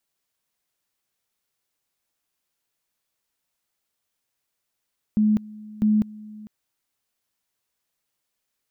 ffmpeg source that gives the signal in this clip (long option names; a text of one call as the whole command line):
ffmpeg -f lavfi -i "aevalsrc='pow(10,(-15.5-21.5*gte(mod(t,0.65),0.2))/20)*sin(2*PI*213*t)':duration=1.3:sample_rate=44100" out.wav